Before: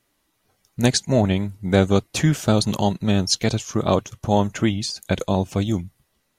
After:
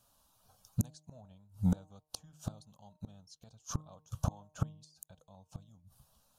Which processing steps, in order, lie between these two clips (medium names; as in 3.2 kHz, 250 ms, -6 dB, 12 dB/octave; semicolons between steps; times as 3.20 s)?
static phaser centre 850 Hz, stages 4; inverted gate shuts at -21 dBFS, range -36 dB; de-hum 153.6 Hz, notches 7; trim +2 dB